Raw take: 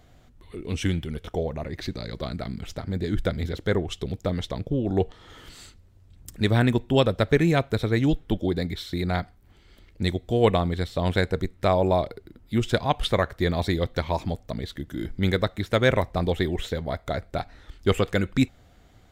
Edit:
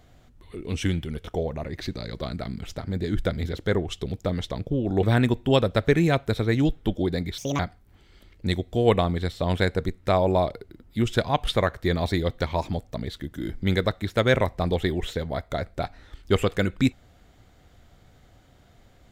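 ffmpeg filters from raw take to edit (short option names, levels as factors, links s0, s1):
-filter_complex "[0:a]asplit=4[s0][s1][s2][s3];[s0]atrim=end=5.032[s4];[s1]atrim=start=6.468:end=8.824[s5];[s2]atrim=start=8.82:end=9.15,asetpts=PTS-STARTPTS,asetrate=69237,aresample=44100,atrim=end_sample=9269,asetpts=PTS-STARTPTS[s6];[s3]atrim=start=9.146[s7];[s4][s5]acrossfade=d=0.004:c1=hsin:c2=hsin[s8];[s8][s6]acrossfade=d=0.004:c1=hsin:c2=hsin[s9];[s9][s7]acrossfade=d=0.004:c1=hsin:c2=hsin"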